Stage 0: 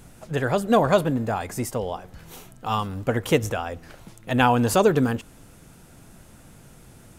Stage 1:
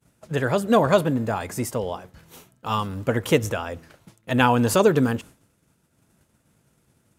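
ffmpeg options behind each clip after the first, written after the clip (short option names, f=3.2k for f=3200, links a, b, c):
-af "bandreject=f=750:w=12,agate=range=-33dB:threshold=-37dB:ratio=3:detection=peak,highpass=66,volume=1dB"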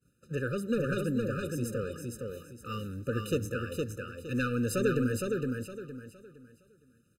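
-filter_complex "[0:a]asoftclip=type=tanh:threshold=-14dB,asplit=2[a][b];[b]aecho=0:1:463|926|1389|1852:0.668|0.201|0.0602|0.018[c];[a][c]amix=inputs=2:normalize=0,afftfilt=real='re*eq(mod(floor(b*sr/1024/600),2),0)':imag='im*eq(mod(floor(b*sr/1024/600),2),0)':win_size=1024:overlap=0.75,volume=-7.5dB"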